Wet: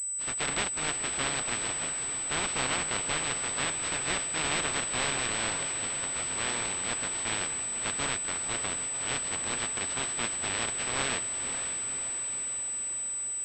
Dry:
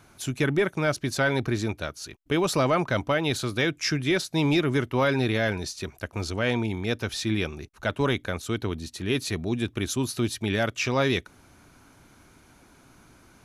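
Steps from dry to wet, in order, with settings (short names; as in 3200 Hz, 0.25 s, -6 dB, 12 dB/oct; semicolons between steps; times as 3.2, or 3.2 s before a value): spectral contrast lowered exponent 0.12; diffused feedback echo 0.534 s, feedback 64%, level -8.5 dB; pulse-width modulation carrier 8000 Hz; gain -5.5 dB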